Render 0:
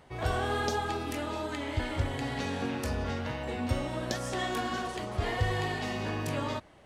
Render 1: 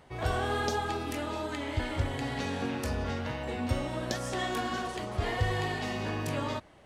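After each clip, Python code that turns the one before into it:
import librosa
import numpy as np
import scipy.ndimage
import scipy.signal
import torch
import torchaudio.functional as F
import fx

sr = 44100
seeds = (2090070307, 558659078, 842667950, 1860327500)

y = x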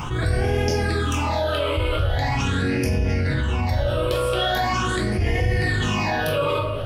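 y = fx.phaser_stages(x, sr, stages=8, low_hz=230.0, high_hz=1200.0, hz=0.42, feedback_pct=40)
y = fx.room_shoebox(y, sr, seeds[0], volume_m3=110.0, walls='mixed', distance_m=0.73)
y = fx.env_flatten(y, sr, amount_pct=70)
y = y * 10.0 ** (3.5 / 20.0)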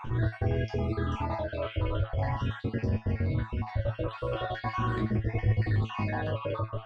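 y = fx.spec_dropout(x, sr, seeds[1], share_pct=33)
y = fx.spacing_loss(y, sr, db_at_10k=33)
y = fx.comb_fb(y, sr, f0_hz=110.0, decay_s=0.15, harmonics='all', damping=0.0, mix_pct=90)
y = y * 10.0 ** (2.0 / 20.0)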